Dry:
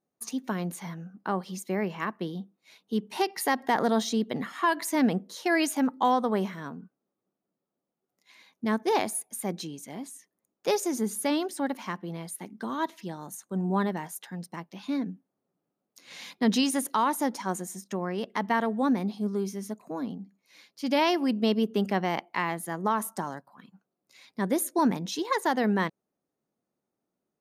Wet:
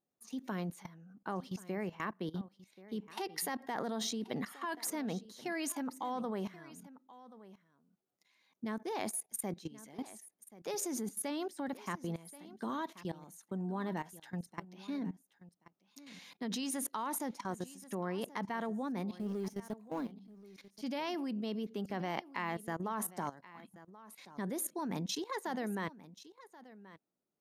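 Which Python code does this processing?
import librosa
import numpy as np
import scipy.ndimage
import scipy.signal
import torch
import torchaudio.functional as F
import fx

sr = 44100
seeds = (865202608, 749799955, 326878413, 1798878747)

y = fx.law_mismatch(x, sr, coded='A', at=(19.16, 20.12))
y = fx.level_steps(y, sr, step_db=18)
y = y + 10.0 ** (-17.5 / 20.0) * np.pad(y, (int(1081 * sr / 1000.0), 0))[:len(y)]
y = y * 10.0 ** (-1.0 / 20.0)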